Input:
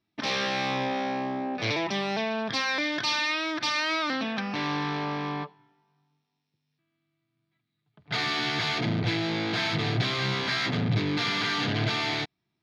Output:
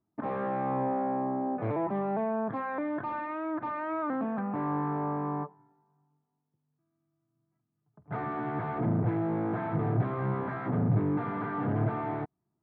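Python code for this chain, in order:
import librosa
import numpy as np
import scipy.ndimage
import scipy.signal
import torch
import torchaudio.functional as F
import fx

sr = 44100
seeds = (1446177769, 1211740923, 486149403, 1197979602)

y = scipy.signal.sosfilt(scipy.signal.butter(4, 1200.0, 'lowpass', fs=sr, output='sos'), x)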